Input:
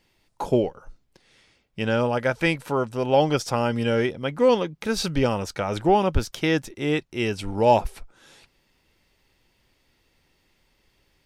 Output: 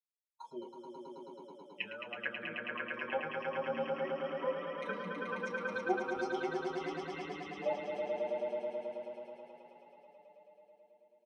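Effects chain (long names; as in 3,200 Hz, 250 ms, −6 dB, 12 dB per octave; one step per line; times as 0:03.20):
spectral dynamics exaggerated over time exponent 2
parametric band 2,000 Hz +3 dB 2.2 octaves
downward compressor 2 to 1, threshold −30 dBFS, peak gain reduction 9.5 dB
meter weighting curve ITU-R 468
treble cut that deepens with the level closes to 630 Hz, closed at −27 dBFS
output level in coarse steps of 16 dB
echo that builds up and dies away 108 ms, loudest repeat 5, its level −5 dB
convolution reverb RT60 0.15 s, pre-delay 3 ms, DRR 3.5 dB
barber-pole flanger 6.1 ms +0.35 Hz
level −6 dB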